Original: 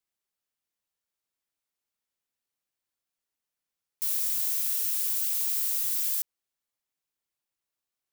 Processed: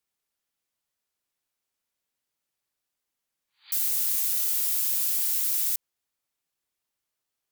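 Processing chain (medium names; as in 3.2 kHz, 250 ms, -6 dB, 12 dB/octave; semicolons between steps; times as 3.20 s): spectral replace 3.77–3.99 s, 730–4400 Hz both; tape speed +8%; trim +4 dB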